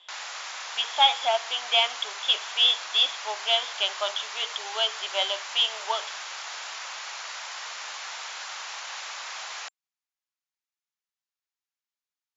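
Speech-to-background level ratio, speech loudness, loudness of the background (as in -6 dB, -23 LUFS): 10.5 dB, -24.5 LUFS, -35.0 LUFS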